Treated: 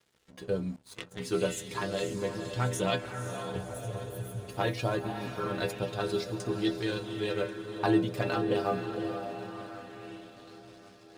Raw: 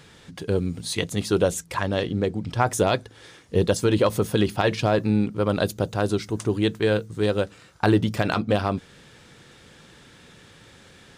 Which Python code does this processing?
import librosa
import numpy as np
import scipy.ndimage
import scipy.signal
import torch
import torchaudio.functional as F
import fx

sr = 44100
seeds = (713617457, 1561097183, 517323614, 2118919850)

y = fx.cheby2_bandstop(x, sr, low_hz=320.0, high_hz=4400.0, order=4, stop_db=50, at=(3.56, 4.47), fade=0.02)
y = fx.over_compress(y, sr, threshold_db=-24.0, ratio=-1.0, at=(5.06, 5.5), fade=0.02)
y = fx.stiff_resonator(y, sr, f0_hz=60.0, decay_s=0.4, stiffness=0.008)
y = fx.echo_feedback(y, sr, ms=1088, feedback_pct=50, wet_db=-17)
y = np.sign(y) * np.maximum(np.abs(y) - 10.0 ** (-56.0 / 20.0), 0.0)
y = fx.echo_diffused(y, sr, ms=521, feedback_pct=53, wet_db=-8.0)
y = fx.power_curve(y, sr, exponent=2.0, at=(0.76, 1.2))
y = fx.bell_lfo(y, sr, hz=0.23, low_hz=400.0, high_hz=5100.0, db=6)